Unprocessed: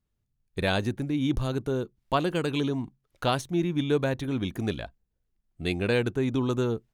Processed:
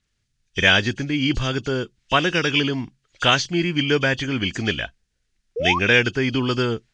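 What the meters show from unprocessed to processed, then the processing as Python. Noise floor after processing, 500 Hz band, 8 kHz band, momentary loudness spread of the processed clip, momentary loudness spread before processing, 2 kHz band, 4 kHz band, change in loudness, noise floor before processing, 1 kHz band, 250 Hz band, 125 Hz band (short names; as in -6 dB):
-73 dBFS, +4.0 dB, +11.0 dB, 11 LU, 7 LU, +15.5 dB, +15.0 dB, +8.0 dB, -79 dBFS, +7.5 dB, +4.0 dB, +4.0 dB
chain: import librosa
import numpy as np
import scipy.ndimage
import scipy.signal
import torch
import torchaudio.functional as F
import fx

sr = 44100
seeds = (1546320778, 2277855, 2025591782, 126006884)

y = fx.freq_compress(x, sr, knee_hz=2500.0, ratio=1.5)
y = fx.spec_paint(y, sr, seeds[0], shape='rise', start_s=5.56, length_s=0.23, low_hz=430.0, high_hz=1200.0, level_db=-28.0)
y = fx.band_shelf(y, sr, hz=3200.0, db=12.5, octaves=2.6)
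y = y * librosa.db_to_amplitude(4.0)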